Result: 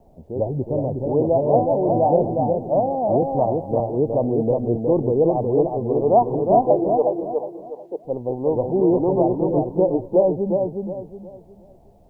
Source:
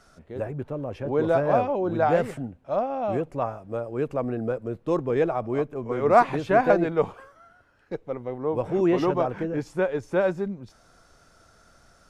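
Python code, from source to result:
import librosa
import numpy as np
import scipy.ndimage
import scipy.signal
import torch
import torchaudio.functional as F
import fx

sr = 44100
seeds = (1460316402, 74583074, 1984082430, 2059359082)

p1 = fx.transient(x, sr, attack_db=0, sustain_db=4, at=(4.47, 5.08))
p2 = scipy.signal.sosfilt(scipy.signal.butter(12, 910.0, 'lowpass', fs=sr, output='sos'), p1)
p3 = p2 + 10.0 ** (-23.0 / 20.0) * np.pad(p2, (int(214 * sr / 1000.0), 0))[:len(p2)]
p4 = fx.rider(p3, sr, range_db=5, speed_s=0.5)
p5 = p3 + (p4 * librosa.db_to_amplitude(2.0))
p6 = fx.quant_dither(p5, sr, seeds[0], bits=12, dither='none')
p7 = fx.highpass(p6, sr, hz=300.0, slope=24, at=(6.65, 8.05))
p8 = p7 + fx.echo_feedback(p7, sr, ms=364, feedback_pct=32, wet_db=-4.0, dry=0)
p9 = fx.band_squash(p8, sr, depth_pct=40, at=(3.22, 3.8))
y = p9 * librosa.db_to_amplitude(-2.5)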